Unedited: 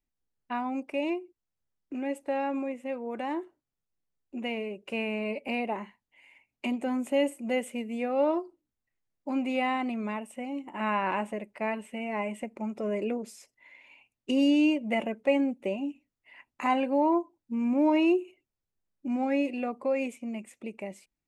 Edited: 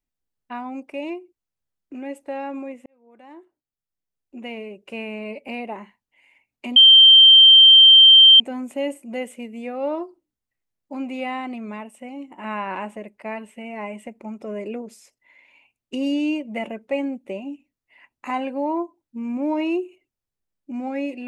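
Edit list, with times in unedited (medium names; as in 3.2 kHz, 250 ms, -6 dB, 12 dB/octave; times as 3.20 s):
2.86–4.58 s: fade in
6.76 s: add tone 3.14 kHz -6 dBFS 1.64 s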